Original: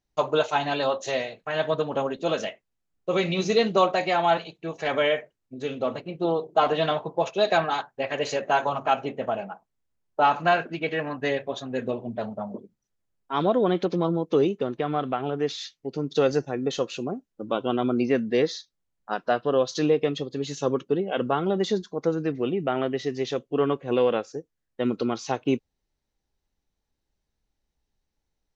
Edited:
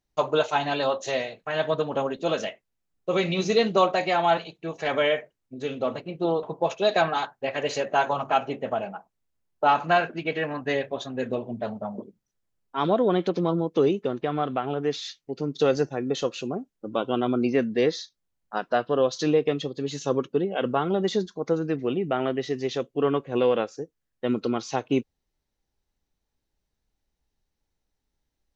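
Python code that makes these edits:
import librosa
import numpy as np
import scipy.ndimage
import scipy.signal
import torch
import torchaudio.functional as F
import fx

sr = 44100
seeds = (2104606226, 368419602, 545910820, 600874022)

y = fx.edit(x, sr, fx.cut(start_s=6.43, length_s=0.56), tone=tone)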